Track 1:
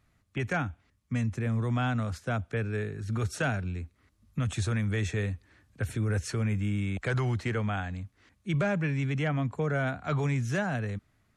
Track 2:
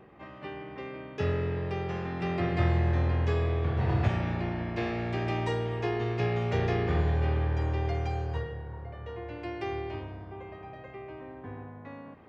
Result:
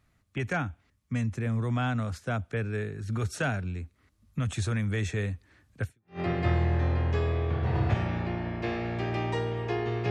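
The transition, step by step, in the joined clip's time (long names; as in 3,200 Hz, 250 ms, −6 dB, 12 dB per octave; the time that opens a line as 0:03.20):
track 1
0:06.02: continue with track 2 from 0:02.16, crossfade 0.36 s exponential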